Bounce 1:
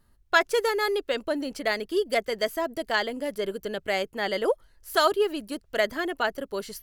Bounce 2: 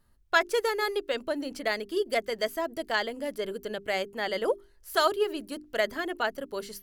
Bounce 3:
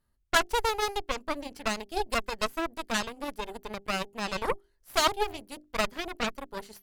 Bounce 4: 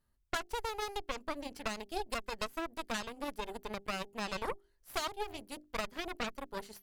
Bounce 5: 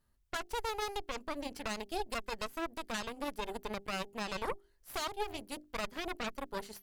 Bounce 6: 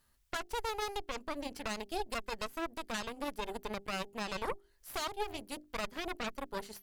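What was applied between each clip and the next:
mains-hum notches 50/100/150/200/250/300/350/400 Hz; level −2.5 dB
harmonic generator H 3 −13 dB, 7 −44 dB, 8 −17 dB, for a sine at −9.5 dBFS; level +2.5 dB
downward compressor 10 to 1, threshold −29 dBFS, peak gain reduction 12.5 dB; level −2.5 dB
brickwall limiter −26.5 dBFS, peak gain reduction 8 dB; level +2.5 dB
one half of a high-frequency compander encoder only

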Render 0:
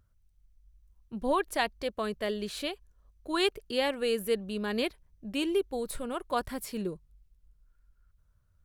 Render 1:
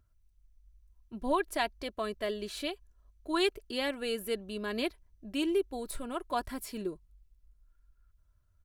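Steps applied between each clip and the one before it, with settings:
comb filter 3 ms, depth 46%
level −3 dB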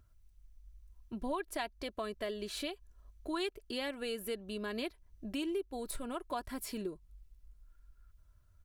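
downward compressor 2.5 to 1, threshold −44 dBFS, peak gain reduction 13.5 dB
level +4.5 dB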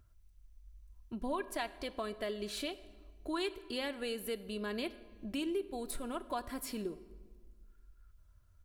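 convolution reverb RT60 1.6 s, pre-delay 4 ms, DRR 13.5 dB

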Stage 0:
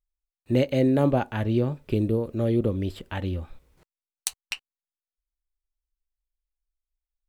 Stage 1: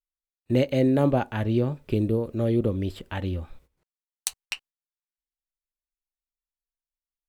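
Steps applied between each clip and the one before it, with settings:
noise gate −51 dBFS, range −15 dB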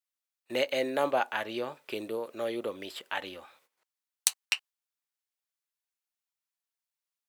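high-pass filter 800 Hz 12 dB per octave
level +3.5 dB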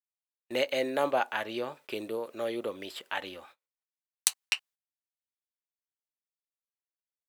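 noise gate −54 dBFS, range −26 dB

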